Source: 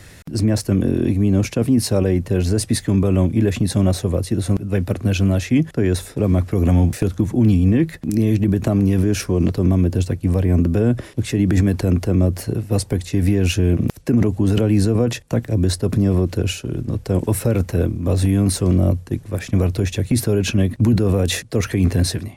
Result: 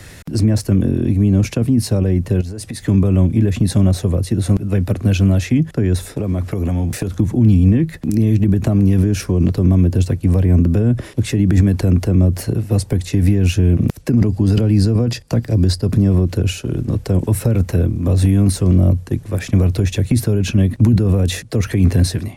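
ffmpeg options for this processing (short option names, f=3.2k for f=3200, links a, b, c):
-filter_complex "[0:a]asettb=1/sr,asplit=3[a][b][c];[a]atrim=end=2.414[d];[b]atrim=start=2.41:end=2.86,asetpts=PTS-STARTPTS,afade=t=in:d=0.004:c=qsin,afade=t=out:st=0.446:d=0.004:c=qsin,acompressor=threshold=-28dB:ratio=8:attack=3.2:release=140:knee=1:detection=peak[e];[c]atrim=start=2.856[f];[d][e]acrossfade=d=0.004:c1=hsin:c2=qsin[g];[g][f]acrossfade=d=0.004:c1=qsin:c2=hsin,asettb=1/sr,asplit=3[h][i][j];[h]atrim=end=6.124[k];[i]atrim=start=6.12:end=7.14,asetpts=PTS-STARTPTS,afade=t=in:d=0.004:c=qsin,afade=t=out:st=1.016:d=0.004:c=qsin,acompressor=threshold=-19dB:ratio=6:attack=3.2:release=140:knee=1:detection=peak[l];[j]atrim=start=7.136[m];[k][l]acrossfade=d=0.004:c1=hsin:c2=qsin[n];[n][m]acrossfade=d=0.004:c1=qsin:c2=hsin,asettb=1/sr,asplit=3[o][p][q];[o]atrim=end=14.104[r];[p]atrim=start=14.1:end=15.92,asetpts=PTS-STARTPTS,afade=t=in:d=0.004:c=qsin,afade=t=out:st=1.816:d=0.004:c=qsin,equalizer=f=4.8k:w=7.7:g=14.5[s];[q]atrim=start=15.916[t];[r][s]acrossfade=d=0.004:c1=hsin:c2=qsin[u];[u][t]acrossfade=d=0.004:c1=qsin:c2=hsin,acrossover=split=230[v][w];[w]acompressor=threshold=-26dB:ratio=6[x];[v][x]amix=inputs=2:normalize=0,volume=4.5dB"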